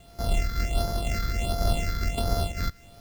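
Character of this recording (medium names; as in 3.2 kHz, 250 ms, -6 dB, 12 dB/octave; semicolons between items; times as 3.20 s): a buzz of ramps at a fixed pitch in blocks of 64 samples; phasing stages 6, 1.4 Hz, lowest notch 740–2600 Hz; a quantiser's noise floor 10-bit, dither none; random flutter of the level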